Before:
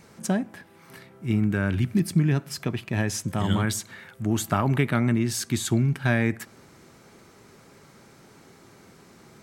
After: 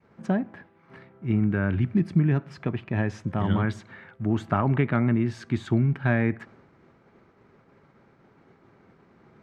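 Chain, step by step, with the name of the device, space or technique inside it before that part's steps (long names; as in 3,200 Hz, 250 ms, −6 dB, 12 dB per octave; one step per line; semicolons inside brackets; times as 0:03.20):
hearing-loss simulation (low-pass filter 2,000 Hz 12 dB per octave; downward expander −47 dBFS)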